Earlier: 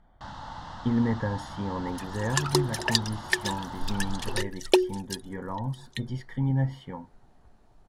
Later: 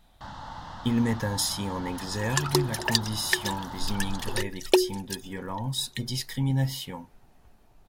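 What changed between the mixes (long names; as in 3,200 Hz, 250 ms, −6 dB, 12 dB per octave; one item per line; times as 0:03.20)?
speech: remove Savitzky-Golay smoothing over 41 samples
master: remove low-pass filter 11,000 Hz 12 dB per octave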